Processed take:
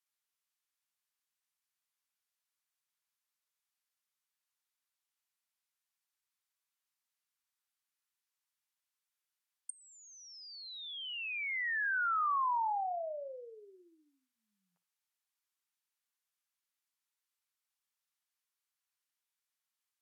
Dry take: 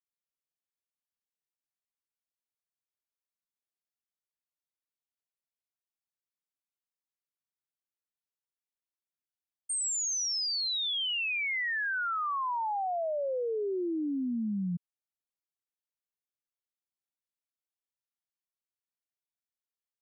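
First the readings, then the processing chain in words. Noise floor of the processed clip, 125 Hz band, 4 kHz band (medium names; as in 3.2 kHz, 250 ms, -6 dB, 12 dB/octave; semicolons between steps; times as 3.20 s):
under -85 dBFS, under -40 dB, -13.5 dB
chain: inverse Chebyshev high-pass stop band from 260 Hz, stop band 60 dB; flutter echo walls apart 9.8 m, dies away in 0.24 s; in parallel at 0 dB: compression, threshold -44 dBFS, peak gain reduction 13 dB; on the sum: low-pass that closes with the level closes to 1.5 kHz, closed at -32.5 dBFS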